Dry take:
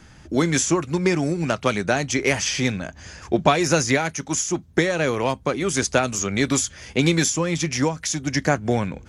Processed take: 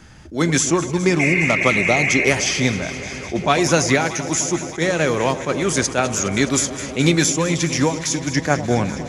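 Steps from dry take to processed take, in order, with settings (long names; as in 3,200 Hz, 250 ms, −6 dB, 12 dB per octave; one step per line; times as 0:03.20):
healed spectral selection 0:01.23–0:02.22, 1,400–2,900 Hz after
delay that swaps between a low-pass and a high-pass 104 ms, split 970 Hz, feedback 90%, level −13.5 dB
level that may rise only so fast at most 230 dB per second
level +3 dB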